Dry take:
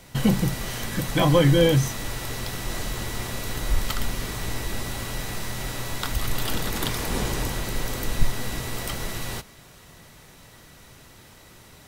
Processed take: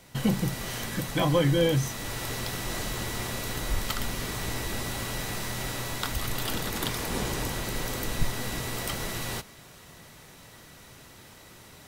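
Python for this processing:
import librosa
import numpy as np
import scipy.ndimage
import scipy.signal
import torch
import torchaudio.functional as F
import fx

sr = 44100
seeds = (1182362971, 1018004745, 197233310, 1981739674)

p1 = fx.low_shelf(x, sr, hz=60.0, db=-7.5)
p2 = fx.rider(p1, sr, range_db=5, speed_s=0.5)
p3 = p1 + F.gain(torch.from_numpy(p2), -1.0).numpy()
p4 = fx.quant_float(p3, sr, bits=8)
y = F.gain(torch.from_numpy(p4), -8.5).numpy()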